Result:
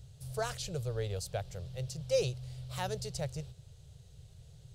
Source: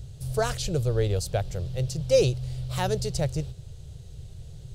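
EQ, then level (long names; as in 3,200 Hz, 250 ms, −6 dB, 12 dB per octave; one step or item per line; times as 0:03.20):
low-shelf EQ 61 Hz −11.5 dB
parametric band 290 Hz −14.5 dB 0.58 octaves
−7.5 dB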